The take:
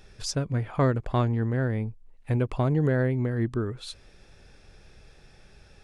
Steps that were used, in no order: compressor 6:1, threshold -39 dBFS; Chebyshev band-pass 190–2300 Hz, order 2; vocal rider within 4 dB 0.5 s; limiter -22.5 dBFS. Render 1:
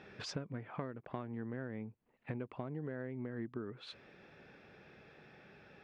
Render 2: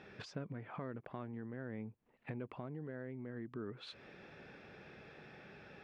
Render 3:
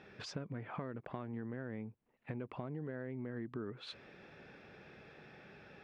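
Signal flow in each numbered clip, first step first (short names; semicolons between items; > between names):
Chebyshev band-pass > vocal rider > compressor > limiter; limiter > compressor > Chebyshev band-pass > vocal rider; limiter > vocal rider > Chebyshev band-pass > compressor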